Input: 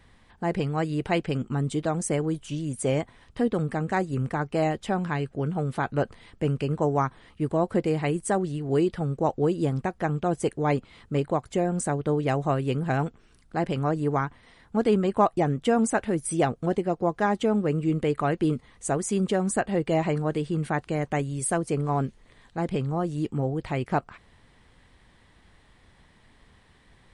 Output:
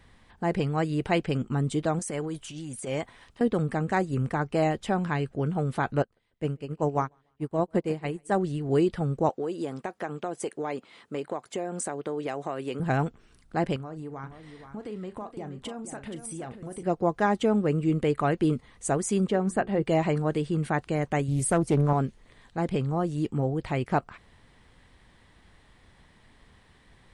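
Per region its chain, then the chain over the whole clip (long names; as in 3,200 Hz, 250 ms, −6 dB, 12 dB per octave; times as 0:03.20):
0:01.99–0:03.41: low-shelf EQ 410 Hz −8.5 dB + transient designer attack −12 dB, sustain +4 dB
0:06.02–0:08.32: repeating echo 145 ms, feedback 43%, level −16 dB + expander for the loud parts 2.5 to 1, over −37 dBFS
0:09.29–0:12.80: high-pass filter 300 Hz + downward compressor 4 to 1, threshold −27 dBFS
0:13.76–0:16.83: downward compressor, threshold −35 dBFS + double-tracking delay 38 ms −12.5 dB + single-tap delay 475 ms −9.5 dB
0:19.27–0:19.83: low-pass filter 2,400 Hz 6 dB per octave + mains-hum notches 60/120/180/240/300/360/420 Hz
0:21.28–0:21.93: low-shelf EQ 240 Hz +8 dB + highs frequency-modulated by the lows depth 0.39 ms
whole clip: no processing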